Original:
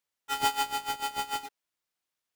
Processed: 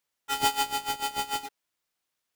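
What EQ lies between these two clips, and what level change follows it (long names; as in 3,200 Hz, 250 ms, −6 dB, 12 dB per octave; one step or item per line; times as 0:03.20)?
dynamic equaliser 1,300 Hz, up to −4 dB, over −38 dBFS, Q 0.78
+4.0 dB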